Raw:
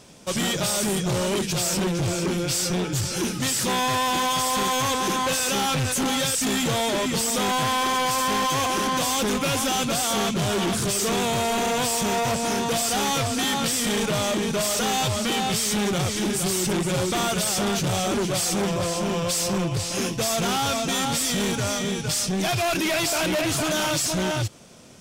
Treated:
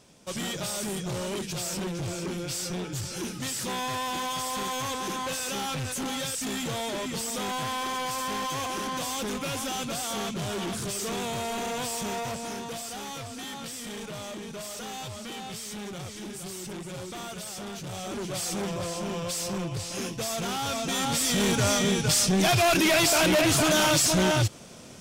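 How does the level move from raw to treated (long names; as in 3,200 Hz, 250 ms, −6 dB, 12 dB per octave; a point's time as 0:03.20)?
0:12.09 −8 dB
0:12.99 −14 dB
0:17.80 −14 dB
0:18.44 −7 dB
0:20.56 −7 dB
0:21.68 +2 dB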